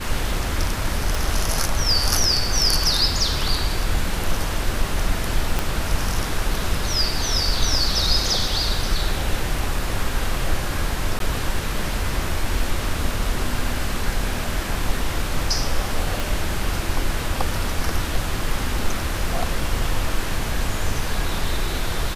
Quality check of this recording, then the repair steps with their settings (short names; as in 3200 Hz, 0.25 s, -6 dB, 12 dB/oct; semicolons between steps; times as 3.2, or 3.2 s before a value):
1.15 pop
5.59 pop -6 dBFS
11.19–11.2 gap 12 ms
16.2 pop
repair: de-click; interpolate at 11.19, 12 ms